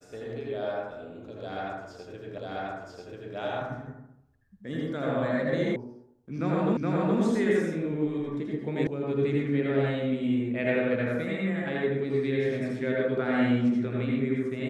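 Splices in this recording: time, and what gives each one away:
2.38 s: repeat of the last 0.99 s
5.76 s: sound stops dead
6.77 s: repeat of the last 0.42 s
8.87 s: sound stops dead

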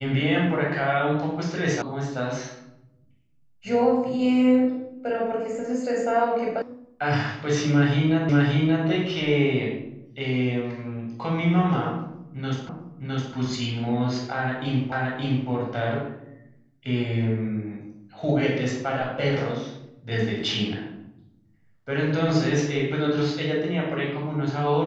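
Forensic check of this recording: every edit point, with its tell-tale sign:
1.82 s: sound stops dead
6.62 s: sound stops dead
8.29 s: repeat of the last 0.58 s
12.69 s: repeat of the last 0.66 s
14.92 s: repeat of the last 0.57 s

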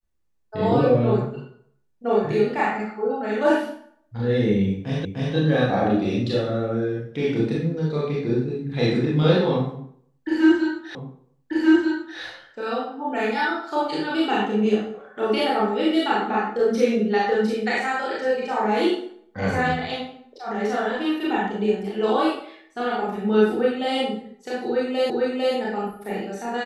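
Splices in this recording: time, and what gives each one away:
5.05 s: repeat of the last 0.3 s
10.95 s: repeat of the last 1.24 s
25.10 s: repeat of the last 0.45 s

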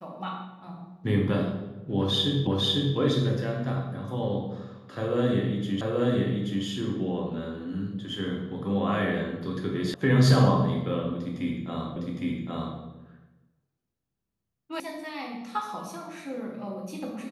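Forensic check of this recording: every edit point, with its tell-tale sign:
2.47 s: repeat of the last 0.5 s
5.81 s: repeat of the last 0.83 s
9.94 s: sound stops dead
11.96 s: repeat of the last 0.81 s
14.80 s: sound stops dead

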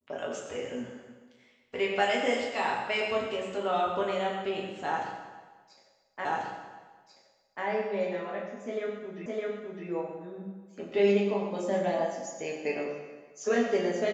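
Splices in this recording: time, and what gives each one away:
6.25 s: repeat of the last 1.39 s
9.26 s: repeat of the last 0.61 s

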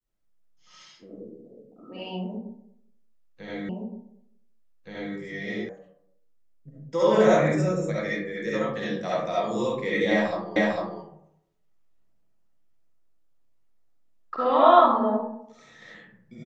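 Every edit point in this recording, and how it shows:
3.69 s: repeat of the last 1.47 s
5.69 s: sound stops dead
10.56 s: repeat of the last 0.45 s

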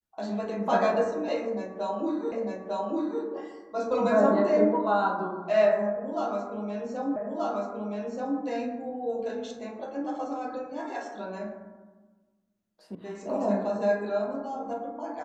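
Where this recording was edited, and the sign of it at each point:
2.32 s: repeat of the last 0.9 s
7.16 s: repeat of the last 1.23 s
12.95 s: sound stops dead

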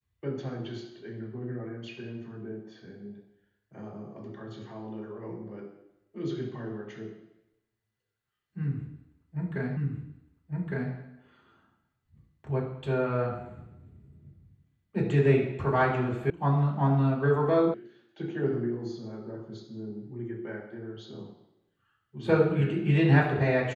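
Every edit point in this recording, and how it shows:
9.77 s: repeat of the last 1.16 s
16.30 s: sound stops dead
17.74 s: sound stops dead

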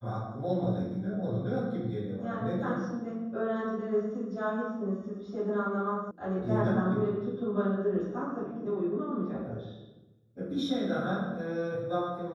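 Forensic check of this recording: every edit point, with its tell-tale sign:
6.11 s: sound stops dead

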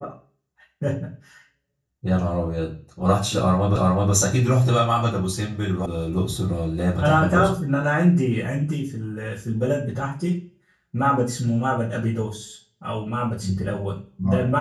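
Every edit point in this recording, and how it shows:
3.76 s: repeat of the last 0.37 s
5.86 s: sound stops dead

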